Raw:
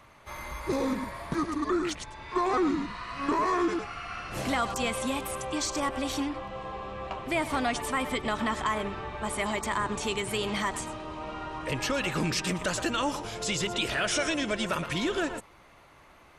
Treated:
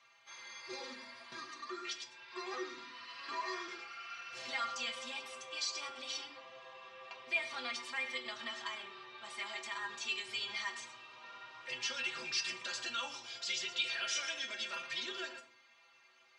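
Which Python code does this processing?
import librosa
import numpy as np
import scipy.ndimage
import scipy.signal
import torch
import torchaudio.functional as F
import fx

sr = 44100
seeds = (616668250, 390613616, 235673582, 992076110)

y = scipy.signal.sosfilt(scipy.signal.butter(4, 4800.0, 'lowpass', fs=sr, output='sos'), x)
y = np.diff(y, prepend=0.0)
y = fx.stiff_resonator(y, sr, f0_hz=120.0, decay_s=0.27, stiffness=0.008)
y = fx.room_shoebox(y, sr, seeds[0], volume_m3=720.0, walls='furnished', distance_m=0.96)
y = F.gain(torch.from_numpy(y), 13.5).numpy()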